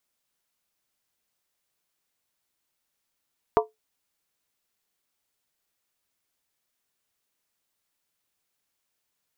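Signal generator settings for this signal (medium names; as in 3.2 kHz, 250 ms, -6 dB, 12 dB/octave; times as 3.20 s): skin hit, lowest mode 435 Hz, decay 0.17 s, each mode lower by 2 dB, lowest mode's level -14.5 dB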